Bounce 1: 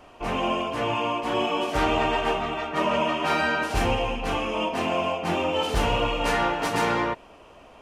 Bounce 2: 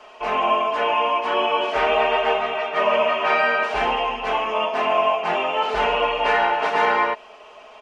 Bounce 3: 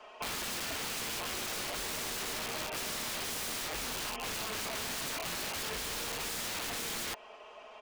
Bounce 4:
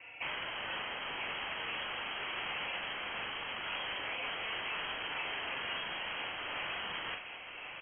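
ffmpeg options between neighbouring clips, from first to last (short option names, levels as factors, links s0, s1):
-filter_complex "[0:a]acrossover=split=2900[s0][s1];[s1]acompressor=threshold=0.00282:ratio=4:attack=1:release=60[s2];[s0][s2]amix=inputs=2:normalize=0,acrossover=split=430 7200:gain=0.1 1 0.126[s3][s4][s5];[s3][s4][s5]amix=inputs=3:normalize=0,aecho=1:1:4.7:0.73,volume=1.88"
-filter_complex "[0:a]acrossover=split=320[s0][s1];[s1]aeval=exprs='(mod(11.9*val(0)+1,2)-1)/11.9':c=same[s2];[s0][s2]amix=inputs=2:normalize=0,acompressor=threshold=0.0398:ratio=6,volume=0.447"
-filter_complex "[0:a]asplit=2[s0][s1];[s1]adelay=42,volume=0.562[s2];[s0][s2]amix=inputs=2:normalize=0,asplit=2[s3][s4];[s4]aecho=0:1:1090:0.376[s5];[s3][s5]amix=inputs=2:normalize=0,lowpass=f=2800:t=q:w=0.5098,lowpass=f=2800:t=q:w=0.6013,lowpass=f=2800:t=q:w=0.9,lowpass=f=2800:t=q:w=2.563,afreqshift=-3300"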